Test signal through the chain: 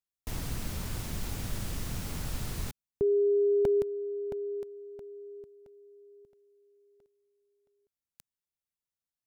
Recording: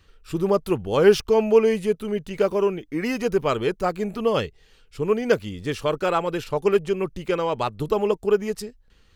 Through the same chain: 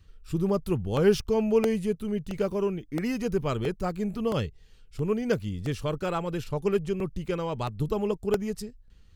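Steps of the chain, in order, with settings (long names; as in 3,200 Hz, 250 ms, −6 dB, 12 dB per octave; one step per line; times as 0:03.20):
bass and treble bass +12 dB, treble +4 dB
regular buffer underruns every 0.67 s, samples 64, repeat, from 0:00.97
level −8.5 dB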